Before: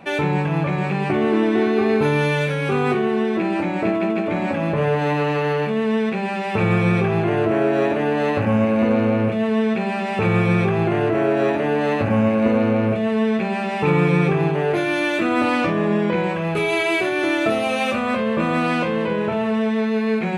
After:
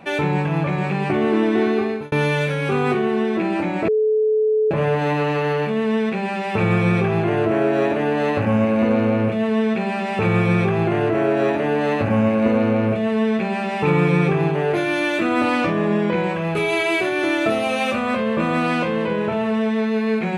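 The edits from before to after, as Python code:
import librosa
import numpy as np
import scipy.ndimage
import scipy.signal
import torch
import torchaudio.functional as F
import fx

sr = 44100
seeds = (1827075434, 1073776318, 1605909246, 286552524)

y = fx.edit(x, sr, fx.fade_out_span(start_s=1.72, length_s=0.4),
    fx.bleep(start_s=3.88, length_s=0.83, hz=432.0, db=-14.5), tone=tone)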